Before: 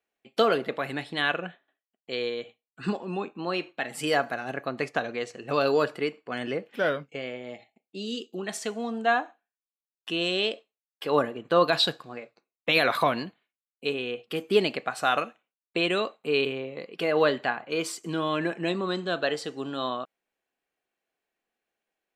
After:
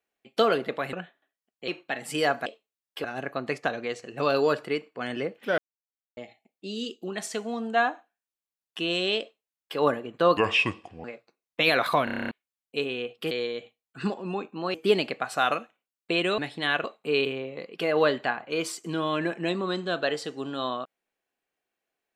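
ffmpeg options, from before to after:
-filter_complex "[0:a]asplit=22[s0][s1][s2][s3][s4][s5][s6][s7][s8][s9][s10][s11][s12][s13][s14][s15][s16][s17][s18][s19][s20][s21];[s0]atrim=end=0.932[s22];[s1]atrim=start=1.388:end=2.142[s23];[s2]atrim=start=3.568:end=4.352[s24];[s3]atrim=start=10.508:end=11.092[s25];[s4]atrim=start=4.348:end=6.89,asetpts=PTS-STARTPTS,afade=t=out:st=2.538:d=0.004:c=hsin[s26];[s5]atrim=start=6.89:end=7.48,asetpts=PTS-STARTPTS,volume=0[s27];[s6]atrim=start=7.48:end=11.684,asetpts=PTS-STARTPTS,afade=t=in:d=0.004:c=hsin[s28];[s7]atrim=start=11.68:end=12.13,asetpts=PTS-STARTPTS,asetrate=29547,aresample=44100,atrim=end_sample=29619,asetpts=PTS-STARTPTS[s29];[s8]atrim=start=12.126:end=13.162[s30];[s9]atrim=start=13.128:end=13.162[s31];[s10]atrim=start=13.128:end=13.162[s32];[s11]atrim=start=13.128:end=13.162[s33];[s12]atrim=start=13.128:end=13.162[s34];[s13]atrim=start=13.128:end=13.162[s35];[s14]atrim=start=13.128:end=13.162[s36];[s15]atrim=start=13.128:end=13.162[s37];[s16]atrim=start=13.128:end=13.162[s38];[s17]atrim=start=13.398:end=14.402[s39];[s18]atrim=start=2.138:end=3.572[s40];[s19]atrim=start=14.398:end=16.042[s41];[s20]atrim=start=0.928:end=1.392[s42];[s21]atrim=start=16.038[s43];[s22][s23]acrossfade=d=0.004:c1=hsin:c2=hsin[s44];[s44][s24]acrossfade=d=0.004:c1=hsin:c2=hsin[s45];[s45][s25]acrossfade=d=0.004:c1=hsin:c2=hsin[s46];[s26][s27][s28]concat=n=3:v=0:a=1[s47];[s46][s47]acrossfade=d=0.004:c1=hsin:c2=hsin[s48];[s48][s29]acrossfade=d=0.004:c1=hsin:c2=hsin[s49];[s49][s30]acrossfade=d=0.004:c1=hsin:c2=hsin[s50];[s50][s31]acrossfade=d=0.004:c1=hsin:c2=hsin[s51];[s51][s32]acrossfade=d=0.004:c1=hsin:c2=hsin[s52];[s52][s33]acrossfade=d=0.004:c1=hsin:c2=hsin[s53];[s53][s34]acrossfade=d=0.004:c1=hsin:c2=hsin[s54];[s54][s35]acrossfade=d=0.004:c1=hsin:c2=hsin[s55];[s55][s36]acrossfade=d=0.004:c1=hsin:c2=hsin[s56];[s56][s37]acrossfade=d=0.004:c1=hsin:c2=hsin[s57];[s57][s38]acrossfade=d=0.004:c1=hsin:c2=hsin[s58];[s58][s39]acrossfade=d=0.004:c1=hsin:c2=hsin[s59];[s59][s40]acrossfade=d=0.004:c1=hsin:c2=hsin[s60];[s60][s41]acrossfade=d=0.004:c1=hsin:c2=hsin[s61];[s61][s42]acrossfade=d=0.004:c1=hsin:c2=hsin[s62];[s62][s43]acrossfade=d=0.004:c1=hsin:c2=hsin"

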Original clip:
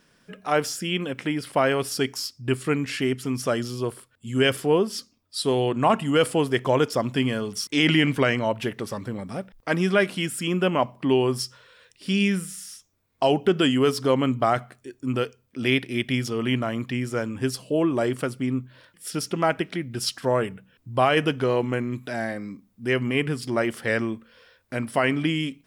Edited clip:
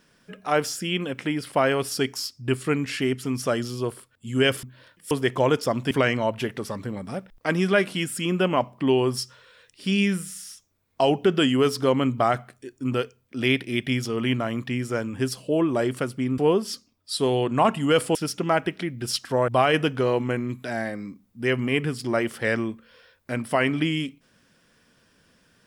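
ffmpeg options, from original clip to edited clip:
-filter_complex "[0:a]asplit=7[s0][s1][s2][s3][s4][s5][s6];[s0]atrim=end=4.632[s7];[s1]atrim=start=18.598:end=19.082[s8];[s2]atrim=start=6.398:end=7.202[s9];[s3]atrim=start=8.128:end=18.602[s10];[s4]atrim=start=4.628:end=6.402[s11];[s5]atrim=start=19.078:end=20.412[s12];[s6]atrim=start=20.908[s13];[s7][s8]acrossfade=d=0.004:c1=hsin:c2=hsin[s14];[s14][s9]acrossfade=d=0.004:c1=hsin:c2=hsin[s15];[s15][s10]acrossfade=d=0.004:c1=hsin:c2=hsin[s16];[s16][s11]acrossfade=d=0.004:c1=hsin:c2=hsin[s17];[s17][s12]acrossfade=d=0.004:c1=hsin:c2=hsin[s18];[s18][s13]acrossfade=d=0.004:c1=hsin:c2=hsin"

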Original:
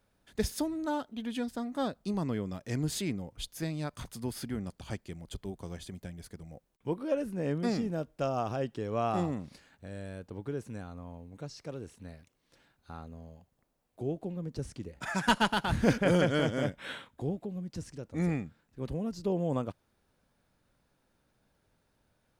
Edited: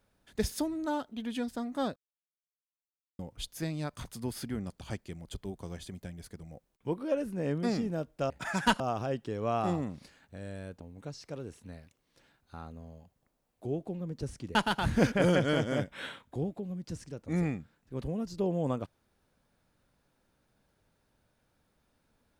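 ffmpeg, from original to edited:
-filter_complex "[0:a]asplit=7[s0][s1][s2][s3][s4][s5][s6];[s0]atrim=end=1.96,asetpts=PTS-STARTPTS,afade=t=out:st=1.956:d=0.004:c=hsin[s7];[s1]atrim=start=1.96:end=3.19,asetpts=PTS-STARTPTS,volume=0[s8];[s2]atrim=start=3.19:end=8.302,asetpts=PTS-STARTPTS,afade=t=in:d=0.004:c=hsin[s9];[s3]atrim=start=14.908:end=15.412[s10];[s4]atrim=start=8.298:end=10.312[s11];[s5]atrim=start=11.168:end=14.912[s12];[s6]atrim=start=15.408[s13];[s7][s8][s9]concat=n=3:v=0:a=1[s14];[s14][s10]acrossfade=d=0.004:c1=hsin:c2=hsin[s15];[s15][s11]acrossfade=d=0.004:c1=hsin:c2=hsin[s16];[s16][s12]acrossfade=d=0.004:c1=hsin:c2=hsin[s17];[s17][s13]acrossfade=d=0.004:c1=hsin:c2=hsin"

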